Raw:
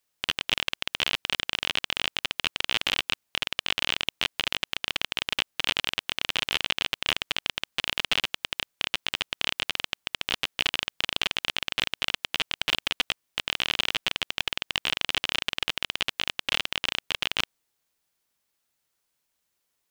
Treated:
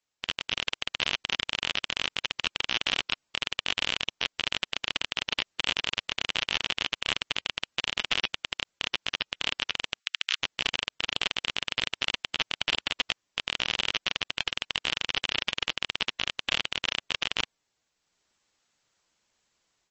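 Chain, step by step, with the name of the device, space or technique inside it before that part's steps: 9.99–10.4 steep high-pass 1300 Hz 36 dB/oct; low-bitrate web radio (AGC gain up to 11 dB; limiter -4 dBFS, peak gain reduction 3 dB; gain -4.5 dB; MP3 32 kbps 32000 Hz)

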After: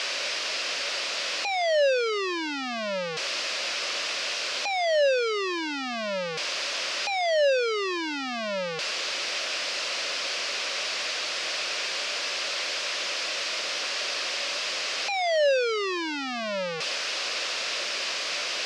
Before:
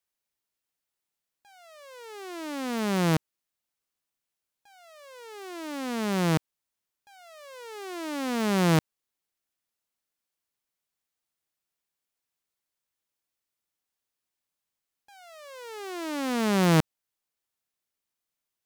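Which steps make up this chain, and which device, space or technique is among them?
home computer beeper (infinite clipping; speaker cabinet 500–5500 Hz, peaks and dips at 570 Hz +8 dB, 850 Hz -8 dB, 2600 Hz +5 dB, 4900 Hz +4 dB); gain +8.5 dB

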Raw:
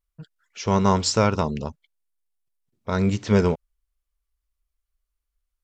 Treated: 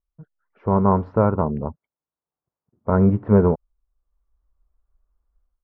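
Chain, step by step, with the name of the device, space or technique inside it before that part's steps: 1.32–2.9 HPF 46 Hz 12 dB/oct; action camera in a waterproof case (LPF 1200 Hz 24 dB/oct; AGC gain up to 14.5 dB; gain -2.5 dB; AAC 96 kbps 48000 Hz)

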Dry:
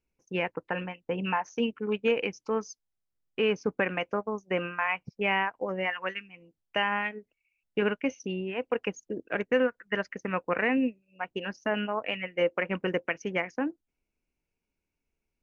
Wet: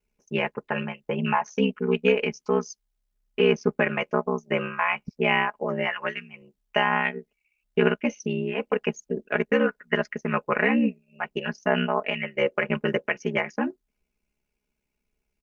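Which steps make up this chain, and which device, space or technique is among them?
ring-modulated robot voice (ring modulator 33 Hz; comb 4.8 ms, depth 63%); gain +6 dB

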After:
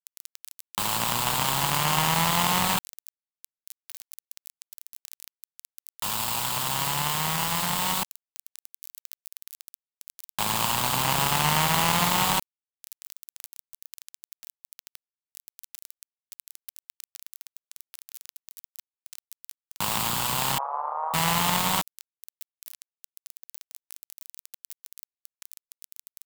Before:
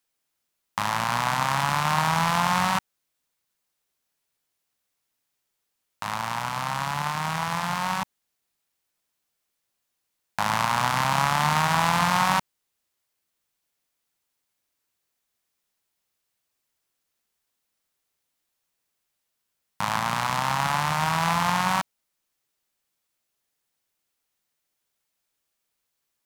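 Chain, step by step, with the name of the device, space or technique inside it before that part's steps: budget class-D amplifier (switching dead time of 0.25 ms; switching spikes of -13 dBFS); 20.58–21.14 elliptic band-pass 510–1200 Hz, stop band 60 dB

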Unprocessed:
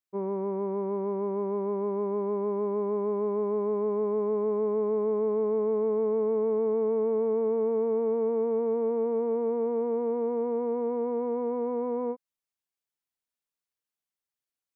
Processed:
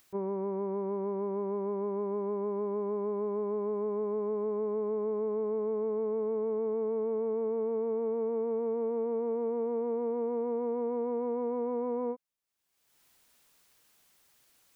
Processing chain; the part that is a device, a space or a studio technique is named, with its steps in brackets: upward and downward compression (upward compressor, threshold -45 dBFS; compressor 3:1, threshold -30 dBFS, peak gain reduction 5.5 dB)

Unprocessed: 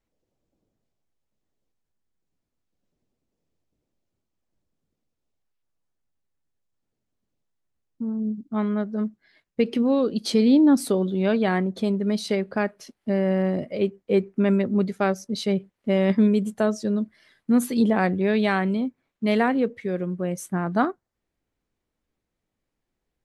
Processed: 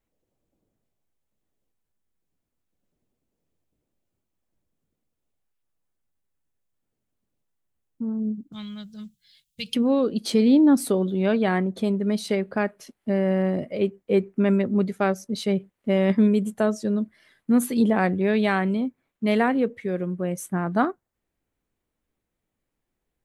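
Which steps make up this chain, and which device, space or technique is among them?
exciter from parts (in parallel at -5 dB: HPF 4200 Hz 12 dB/oct + soft clip -27 dBFS, distortion -18 dB + HPF 4500 Hz 12 dB/oct); 8.52–9.75 on the sum: EQ curve 170 Hz 0 dB, 280 Hz -28 dB, 1900 Hz -11 dB, 3300 Hz +12 dB

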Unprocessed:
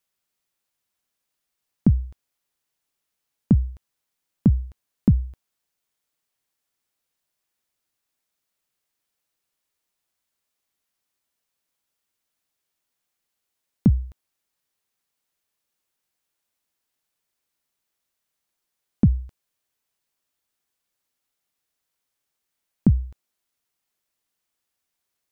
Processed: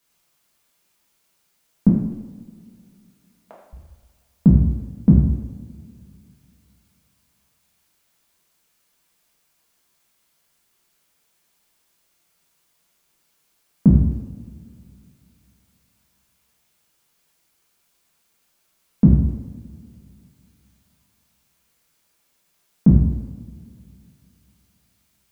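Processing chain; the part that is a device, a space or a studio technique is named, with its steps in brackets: 1.88–3.73 Chebyshev high-pass 620 Hz, order 4; plain cassette with noise reduction switched in (mismatched tape noise reduction decoder only; wow and flutter; white noise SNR 41 dB); two-slope reverb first 0.86 s, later 2.9 s, from -18 dB, DRR -5 dB; gain -1.5 dB

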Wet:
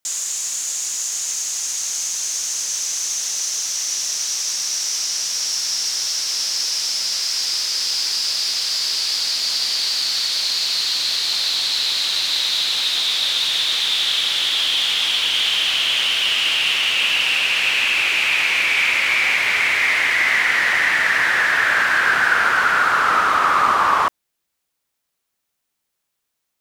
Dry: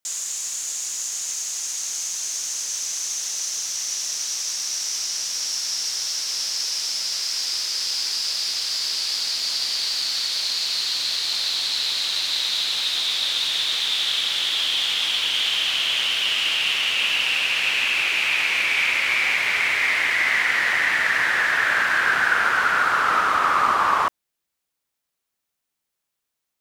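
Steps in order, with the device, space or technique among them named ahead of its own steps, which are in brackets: parallel distortion (in parallel at -11 dB: hard clip -23 dBFS, distortion -8 dB); on the sum: gain +2 dB

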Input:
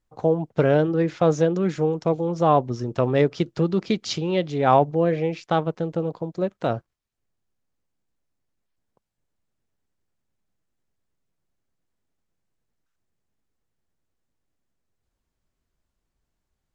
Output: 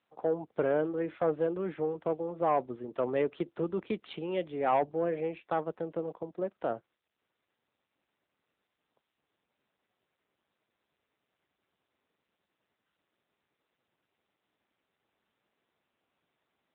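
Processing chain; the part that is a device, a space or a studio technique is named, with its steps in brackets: telephone (BPF 280–3000 Hz; soft clip -11 dBFS, distortion -17 dB; gain -6.5 dB; AMR-NB 10.2 kbps 8000 Hz)

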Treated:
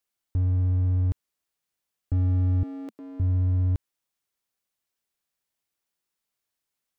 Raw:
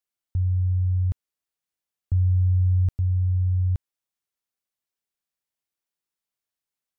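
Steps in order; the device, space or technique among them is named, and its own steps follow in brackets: clipper into limiter (hard clip -21.5 dBFS, distortion -14 dB; limiter -25 dBFS, peak gain reduction 3.5 dB); 2.63–3.2 elliptic high-pass 220 Hz, stop band 60 dB; gain +4.5 dB

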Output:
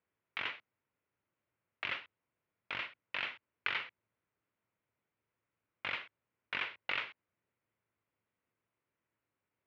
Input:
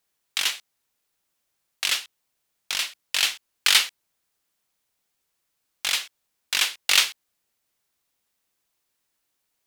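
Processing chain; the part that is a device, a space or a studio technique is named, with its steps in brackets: bass amplifier (compressor 4:1, threshold -21 dBFS, peak gain reduction 8 dB; speaker cabinet 67–2100 Hz, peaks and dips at 110 Hz +9 dB, 770 Hz -7 dB, 1200 Hz -3 dB, 1700 Hz -5 dB); gain -1 dB

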